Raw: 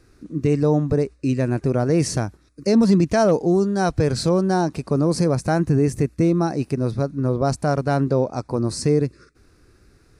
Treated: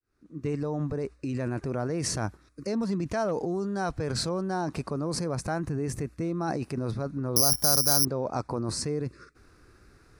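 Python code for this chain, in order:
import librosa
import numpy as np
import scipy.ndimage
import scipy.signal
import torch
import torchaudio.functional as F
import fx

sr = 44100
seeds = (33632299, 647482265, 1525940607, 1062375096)

p1 = fx.fade_in_head(x, sr, length_s=1.25)
p2 = fx.over_compress(p1, sr, threshold_db=-25.0, ratio=-0.5)
p3 = p1 + F.gain(torch.from_numpy(p2), 2.0).numpy()
p4 = fx.resample_bad(p3, sr, factor=8, down='filtered', up='zero_stuff', at=(7.36, 8.05))
p5 = fx.peak_eq(p4, sr, hz=1200.0, db=6.0, octaves=1.6)
y = F.gain(torch.from_numpy(p5), -14.5).numpy()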